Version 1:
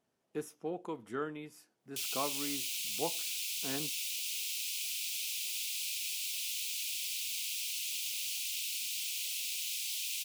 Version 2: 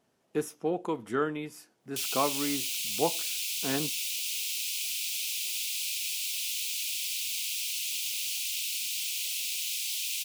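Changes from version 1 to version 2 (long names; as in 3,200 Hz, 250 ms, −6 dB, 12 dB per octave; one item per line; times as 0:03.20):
speech +8.5 dB
background +4.5 dB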